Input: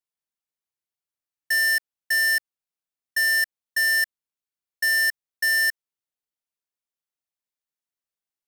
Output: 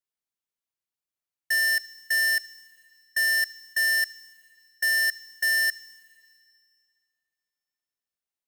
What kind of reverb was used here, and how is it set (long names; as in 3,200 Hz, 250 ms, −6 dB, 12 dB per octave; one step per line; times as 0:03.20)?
four-comb reverb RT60 2.3 s, combs from 28 ms, DRR 17 dB
level −2 dB